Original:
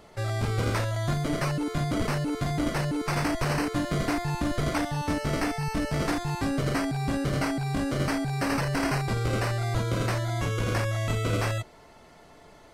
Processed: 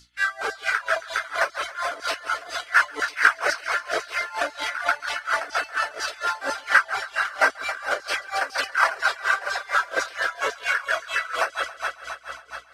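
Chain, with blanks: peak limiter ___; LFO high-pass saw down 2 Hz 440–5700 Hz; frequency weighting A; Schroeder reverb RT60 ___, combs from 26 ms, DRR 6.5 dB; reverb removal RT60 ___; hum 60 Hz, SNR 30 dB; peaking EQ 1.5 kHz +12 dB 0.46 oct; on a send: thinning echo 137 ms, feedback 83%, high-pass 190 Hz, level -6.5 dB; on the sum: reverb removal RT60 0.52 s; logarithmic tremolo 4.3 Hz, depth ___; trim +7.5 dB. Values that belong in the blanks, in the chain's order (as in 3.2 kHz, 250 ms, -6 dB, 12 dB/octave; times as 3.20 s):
-18 dBFS, 3.1 s, 1.7 s, 20 dB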